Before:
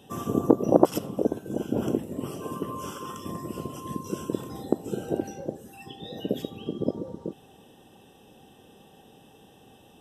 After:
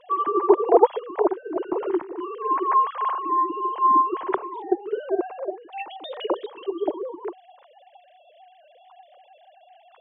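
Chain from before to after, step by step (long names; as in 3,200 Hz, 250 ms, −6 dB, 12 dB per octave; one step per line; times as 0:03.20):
three sine waves on the formant tracks
graphic EQ with 15 bands 250 Hz −6 dB, 1,000 Hz +10 dB, 2,500 Hz −4 dB
level +3.5 dB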